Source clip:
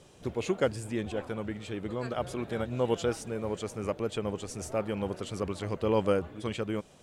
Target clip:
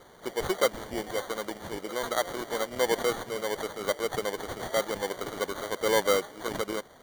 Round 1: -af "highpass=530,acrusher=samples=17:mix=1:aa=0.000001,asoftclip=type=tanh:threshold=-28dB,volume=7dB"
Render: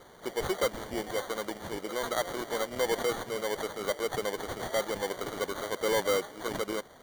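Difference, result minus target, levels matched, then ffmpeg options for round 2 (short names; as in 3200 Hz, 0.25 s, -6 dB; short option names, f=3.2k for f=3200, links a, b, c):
soft clip: distortion +12 dB
-af "highpass=530,acrusher=samples=17:mix=1:aa=0.000001,asoftclip=type=tanh:threshold=-18.5dB,volume=7dB"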